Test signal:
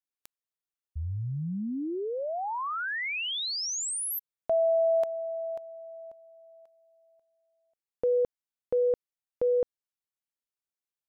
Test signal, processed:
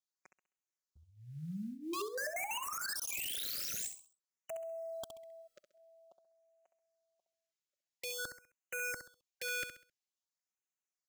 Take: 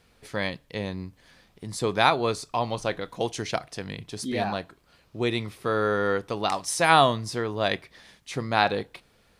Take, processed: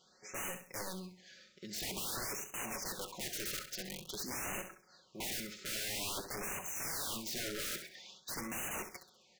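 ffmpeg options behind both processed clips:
ffmpeg -i in.wav -filter_complex "[0:a]aemphasis=mode=production:type=bsi,acrossover=split=4100[link_01][link_02];[link_02]acompressor=threshold=-30dB:ratio=4:attack=1:release=60[link_03];[link_01][link_03]amix=inputs=2:normalize=0,highpass=frequency=100:poles=1,aecho=1:1:5.4:0.83,aresample=16000,asoftclip=type=tanh:threshold=-13.5dB,aresample=44100,acrusher=bits=8:mode=log:mix=0:aa=0.000001,aeval=exprs='(mod(25.1*val(0)+1,2)-1)/25.1':channel_layout=same,asplit=2[link_04][link_05];[link_05]aecho=0:1:66|132|198|264:0.355|0.121|0.041|0.0139[link_06];[link_04][link_06]amix=inputs=2:normalize=0,afftfilt=real='re*(1-between(b*sr/1024,850*pow(4300/850,0.5+0.5*sin(2*PI*0.49*pts/sr))/1.41,850*pow(4300/850,0.5+0.5*sin(2*PI*0.49*pts/sr))*1.41))':imag='im*(1-between(b*sr/1024,850*pow(4300/850,0.5+0.5*sin(2*PI*0.49*pts/sr))/1.41,850*pow(4300/850,0.5+0.5*sin(2*PI*0.49*pts/sr))*1.41))':win_size=1024:overlap=0.75,volume=-6.5dB" out.wav

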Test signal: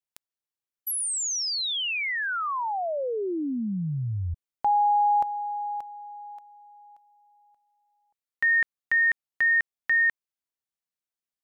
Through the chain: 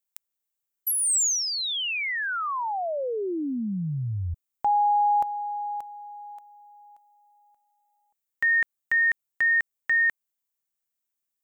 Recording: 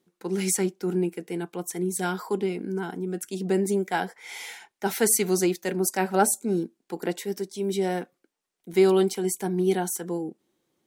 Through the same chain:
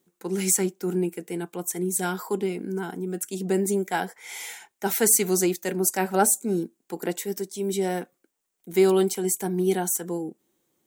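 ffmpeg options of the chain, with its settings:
ffmpeg -i in.wav -af "aexciter=amount=1.2:drive=9.2:freq=6600" out.wav

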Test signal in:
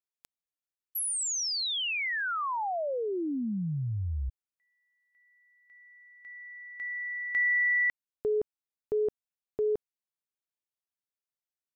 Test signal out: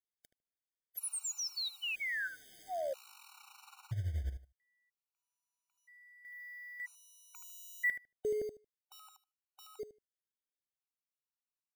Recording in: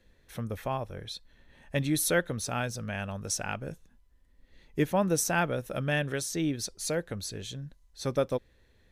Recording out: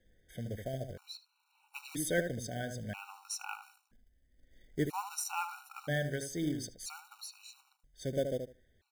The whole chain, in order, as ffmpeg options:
ffmpeg -i in.wav -filter_complex "[0:a]asplit=2[link_01][link_02];[link_02]adelay=76,lowpass=frequency=1100:poles=1,volume=-5.5dB,asplit=2[link_03][link_04];[link_04]adelay=76,lowpass=frequency=1100:poles=1,volume=0.18,asplit=2[link_05][link_06];[link_06]adelay=76,lowpass=frequency=1100:poles=1,volume=0.18[link_07];[link_01][link_03][link_05][link_07]amix=inputs=4:normalize=0,acrusher=bits=4:mode=log:mix=0:aa=0.000001,afftfilt=real='re*gt(sin(2*PI*0.51*pts/sr)*(1-2*mod(floor(b*sr/1024/750),2)),0)':imag='im*gt(sin(2*PI*0.51*pts/sr)*(1-2*mod(floor(b*sr/1024/750),2)),0)':win_size=1024:overlap=0.75,volume=-5.5dB" out.wav

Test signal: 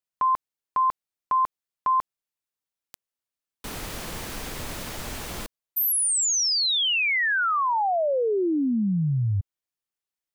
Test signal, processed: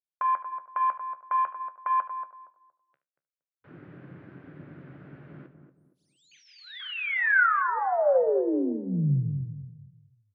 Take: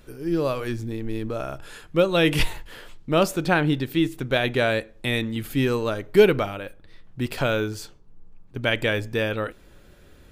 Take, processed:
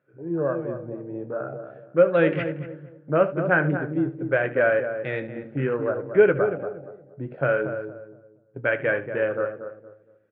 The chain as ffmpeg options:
ffmpeg -i in.wav -filter_complex "[0:a]afwtdn=0.0355,asplit=2[link_01][link_02];[link_02]adelay=233,lowpass=frequency=910:poles=1,volume=-7dB,asplit=2[link_03][link_04];[link_04]adelay=233,lowpass=frequency=910:poles=1,volume=0.34,asplit=2[link_05][link_06];[link_06]adelay=233,lowpass=frequency=910:poles=1,volume=0.34,asplit=2[link_07][link_08];[link_08]adelay=233,lowpass=frequency=910:poles=1,volume=0.34[link_09];[link_03][link_05][link_07][link_09]amix=inputs=4:normalize=0[link_10];[link_01][link_10]amix=inputs=2:normalize=0,flanger=delay=9.6:depth=5.1:regen=-57:speed=0.48:shape=sinusoidal,highpass=frequency=140:width=0.5412,highpass=frequency=140:width=1.3066,equalizer=frequency=140:width_type=q:width=4:gain=7,equalizer=frequency=220:width_type=q:width=4:gain=-9,equalizer=frequency=550:width_type=q:width=4:gain=7,equalizer=frequency=910:width_type=q:width=4:gain=-4,equalizer=frequency=1500:width_type=q:width=4:gain=8,lowpass=frequency=2200:width=0.5412,lowpass=frequency=2200:width=1.3066,asplit=2[link_11][link_12];[link_12]aecho=0:1:74:0.168[link_13];[link_11][link_13]amix=inputs=2:normalize=0,volume=1dB" out.wav

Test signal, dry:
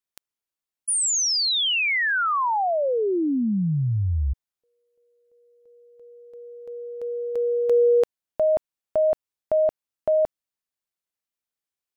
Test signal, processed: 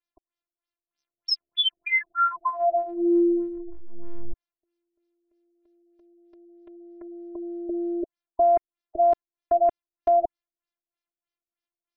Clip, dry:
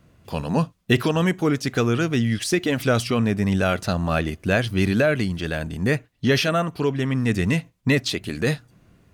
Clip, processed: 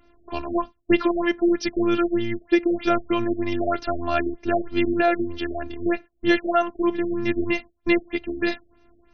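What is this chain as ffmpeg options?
ffmpeg -i in.wav -af "afftfilt=real='hypot(re,im)*cos(PI*b)':imag='0':win_size=512:overlap=0.75,afftfilt=real='re*lt(b*sr/1024,630*pow(6400/630,0.5+0.5*sin(2*PI*3.2*pts/sr)))':imag='im*lt(b*sr/1024,630*pow(6400/630,0.5+0.5*sin(2*PI*3.2*pts/sr)))':win_size=1024:overlap=0.75,volume=4.5dB" out.wav

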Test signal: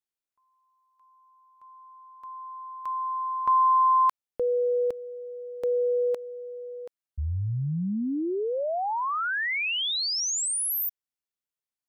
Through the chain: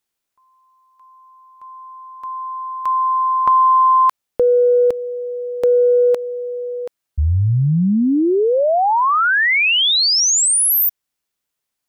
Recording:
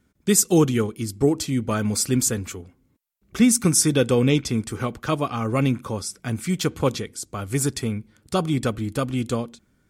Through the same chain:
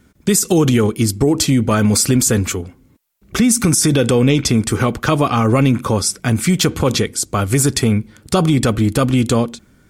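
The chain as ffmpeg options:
ffmpeg -i in.wav -af "acompressor=threshold=-26dB:ratio=6:attack=27:release=25:knee=1:detection=rms,alimiter=level_in=16.5dB:limit=-1dB:release=50:level=0:latency=1,volume=-3.5dB" out.wav

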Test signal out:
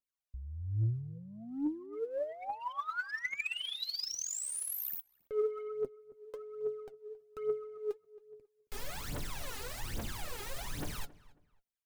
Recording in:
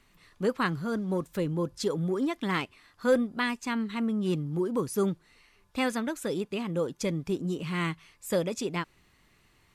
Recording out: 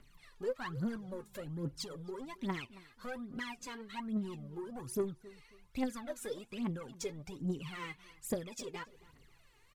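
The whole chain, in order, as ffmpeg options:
ffmpeg -i in.wav -filter_complex "[0:a]acompressor=threshold=-34dB:ratio=2.5,flanger=delay=6.7:depth=2.1:regen=54:speed=0.55:shape=triangular,asoftclip=type=tanh:threshold=-34.5dB,aphaser=in_gain=1:out_gain=1:delay=2.5:decay=0.76:speed=1.2:type=triangular,asplit=2[link_01][link_02];[link_02]adelay=272,lowpass=frequency=2300:poles=1,volume=-19.5dB,asplit=2[link_03][link_04];[link_04]adelay=272,lowpass=frequency=2300:poles=1,volume=0.29[link_05];[link_03][link_05]amix=inputs=2:normalize=0[link_06];[link_01][link_06]amix=inputs=2:normalize=0,volume=-2.5dB" out.wav

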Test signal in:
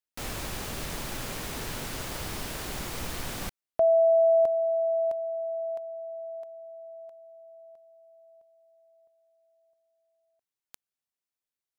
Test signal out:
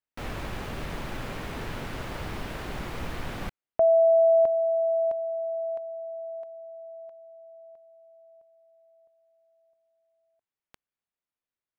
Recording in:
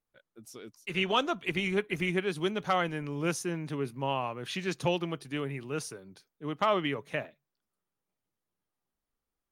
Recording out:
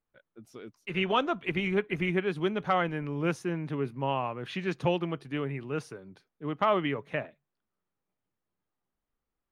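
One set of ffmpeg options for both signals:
ffmpeg -i in.wav -af "bass=frequency=250:gain=1,treble=frequency=4000:gain=-15,volume=1.5dB" out.wav

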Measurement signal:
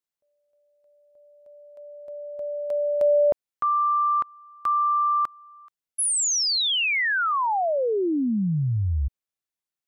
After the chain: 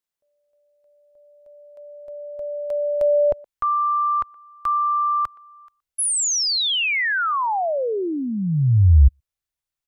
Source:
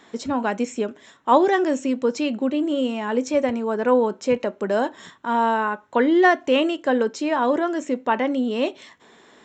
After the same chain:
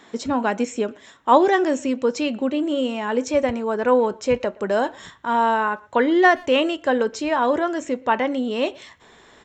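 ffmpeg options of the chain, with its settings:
ffmpeg -i in.wav -filter_complex "[0:a]asubboost=boost=6.5:cutoff=86,asplit=2[link_01][link_02];[link_02]adelay=120,highpass=300,lowpass=3400,asoftclip=type=hard:threshold=-15dB,volume=-24dB[link_03];[link_01][link_03]amix=inputs=2:normalize=0,volume=2dB" out.wav

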